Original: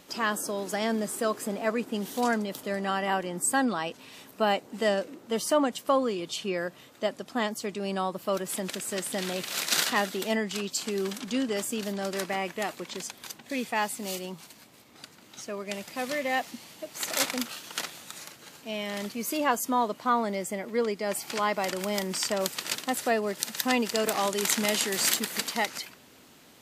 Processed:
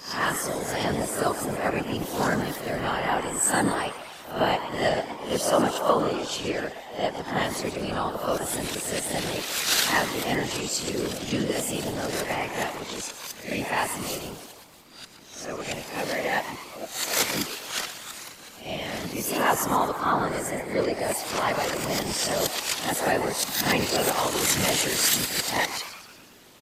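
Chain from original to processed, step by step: reverse spectral sustain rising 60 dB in 0.43 s; frequency-shifting echo 120 ms, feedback 53%, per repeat +140 Hz, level -11.5 dB; whisper effect; trim +1 dB

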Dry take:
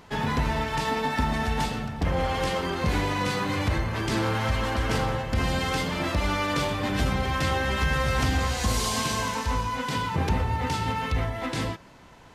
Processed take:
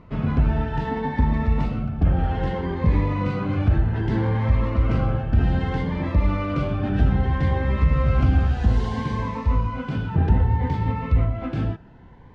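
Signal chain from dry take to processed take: low-pass 1.9 kHz 12 dB/octave; bass shelf 230 Hz +9.5 dB; Shepard-style phaser rising 0.63 Hz

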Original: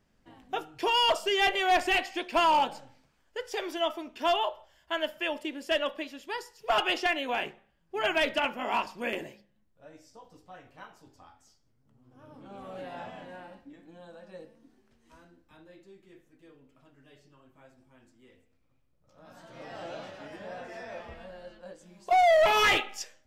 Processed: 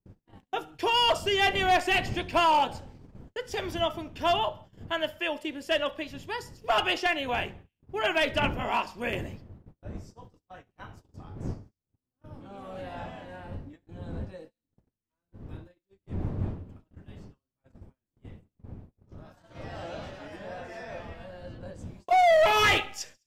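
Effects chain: wind noise 210 Hz -45 dBFS; peaking EQ 91 Hz +8 dB 0.38 oct; gate -48 dBFS, range -34 dB; feedback echo behind a high-pass 69 ms, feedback 41%, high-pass 3.8 kHz, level -23 dB; trim +1 dB

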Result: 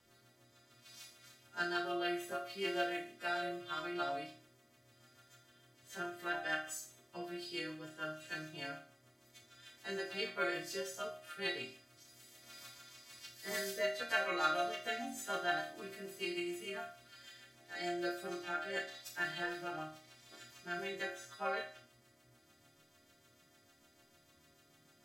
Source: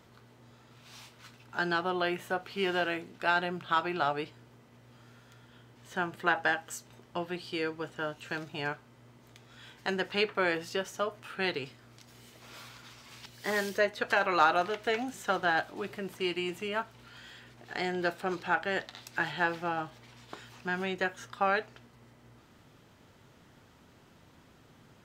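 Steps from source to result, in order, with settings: partials quantised in pitch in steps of 2 st; rotary cabinet horn 6.7 Hz; chord resonator D#2 minor, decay 0.44 s; trim +6 dB

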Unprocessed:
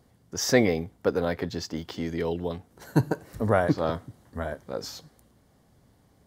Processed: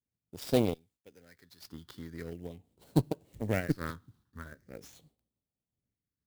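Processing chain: 0.74–1.65 s: pre-emphasis filter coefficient 0.9; expander -48 dBFS; treble shelf 9.1 kHz +10 dB; in parallel at -3 dB: compression, threshold -36 dBFS, peak gain reduction 19.5 dB; on the sum: Chebyshev shaper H 3 -32 dB, 5 -27 dB, 7 -18 dB, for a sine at -4.5 dBFS; phase shifter stages 6, 0.42 Hz, lowest notch 620–1800 Hz; sampling jitter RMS 0.023 ms; trim -4.5 dB

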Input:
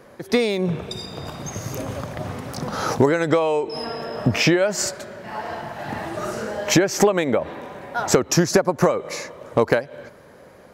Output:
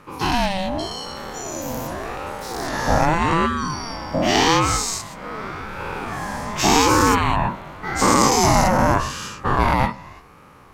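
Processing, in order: every event in the spectrogram widened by 240 ms; ring modulator with a swept carrier 540 Hz, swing 30%, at 0.86 Hz; trim -3 dB

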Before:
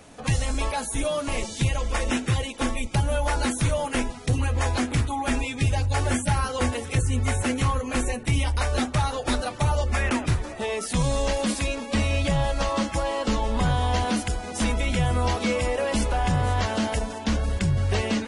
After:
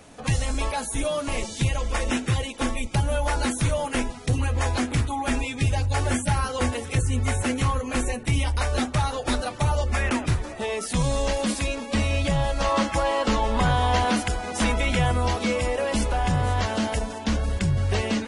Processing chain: 12.64–15.12 s: peaking EQ 1.3 kHz +5 dB 3 oct

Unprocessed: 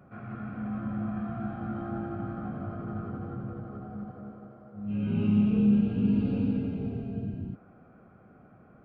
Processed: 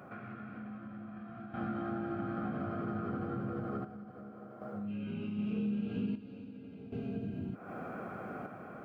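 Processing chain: high-pass 400 Hz 6 dB/octave; dynamic bell 860 Hz, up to -6 dB, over -57 dBFS, Q 1.2; compression 6:1, threshold -52 dBFS, peak gain reduction 23.5 dB; random-step tremolo 1.3 Hz, depth 75%; trim +17.5 dB

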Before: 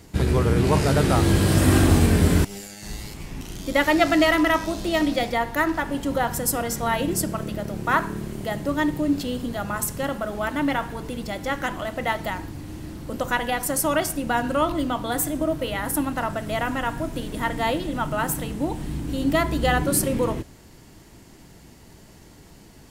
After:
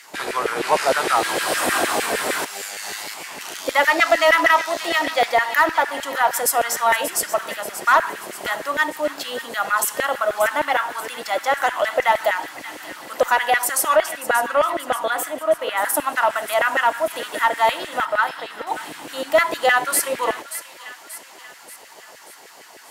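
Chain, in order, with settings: 13.96–15.82 s: treble shelf 3.3 kHz -9.5 dB; in parallel at +0.5 dB: compression, threshold -27 dBFS, peak gain reduction 14 dB; on the sum: LFO high-pass saw down 6.5 Hz 490–2000 Hz; Chebyshev shaper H 5 -23 dB, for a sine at -1.5 dBFS; 18.05–18.67 s: rippled Chebyshev low-pass 5.4 kHz, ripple 6 dB; on a send: feedback echo behind a high-pass 583 ms, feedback 52%, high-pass 1.8 kHz, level -11 dB; on the sum: trim -1.5 dB

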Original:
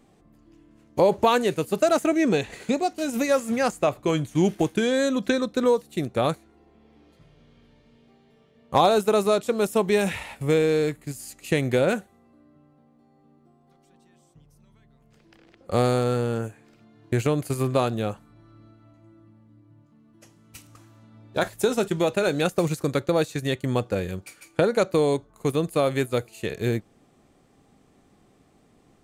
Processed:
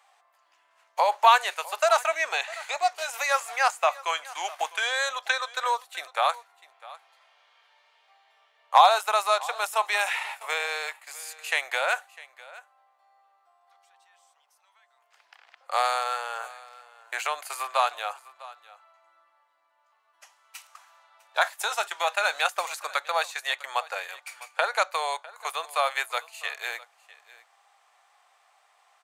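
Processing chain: steep high-pass 760 Hz 36 dB/octave; treble shelf 4.2 kHz -7.5 dB; on a send: delay 652 ms -20 dB; on the sum: trim +6.5 dB

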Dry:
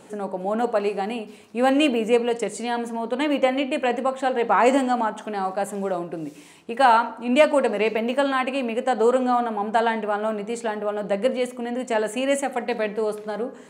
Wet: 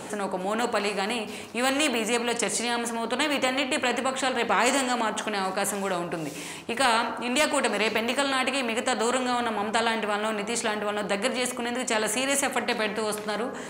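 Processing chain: spectrum-flattening compressor 2:1; trim -3 dB

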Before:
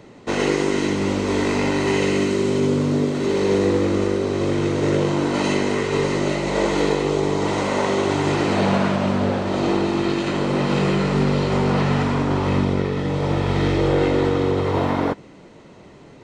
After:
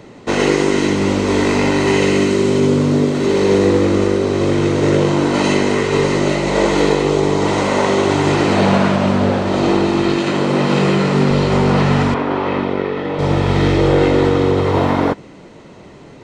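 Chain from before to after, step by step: 10.17–11.31 s: high-pass 110 Hz; 12.14–13.19 s: three-band isolator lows -15 dB, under 250 Hz, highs -21 dB, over 3.8 kHz; trim +5.5 dB

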